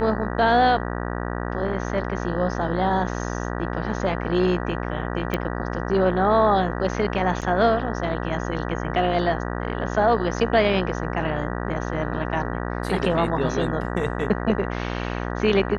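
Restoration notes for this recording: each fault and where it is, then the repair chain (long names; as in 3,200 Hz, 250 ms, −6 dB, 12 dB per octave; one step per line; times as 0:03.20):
mains buzz 60 Hz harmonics 32 −28 dBFS
0:05.34: click −11 dBFS
0:07.41–0:07.42: drop-out 7.5 ms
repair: click removal
hum removal 60 Hz, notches 32
repair the gap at 0:07.41, 7.5 ms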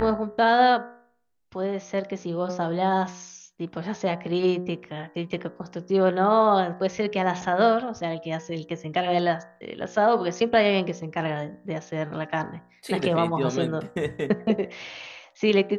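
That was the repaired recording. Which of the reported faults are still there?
none of them is left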